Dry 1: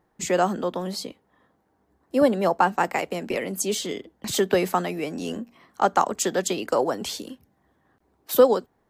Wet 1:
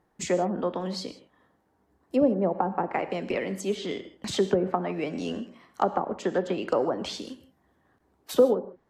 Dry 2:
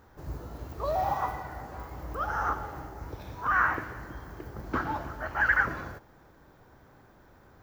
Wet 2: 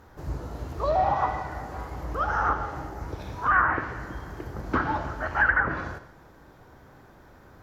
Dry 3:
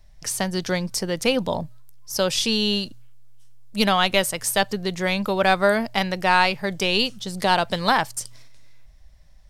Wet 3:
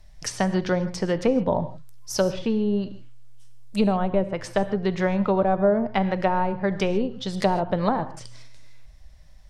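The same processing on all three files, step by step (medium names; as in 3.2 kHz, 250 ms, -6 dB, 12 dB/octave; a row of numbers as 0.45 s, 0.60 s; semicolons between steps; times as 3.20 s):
low-pass that closes with the level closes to 550 Hz, closed at -17 dBFS; gated-style reverb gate 180 ms flat, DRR 11.5 dB; peak normalisation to -9 dBFS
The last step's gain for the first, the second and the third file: -1.5 dB, +4.5 dB, +2.0 dB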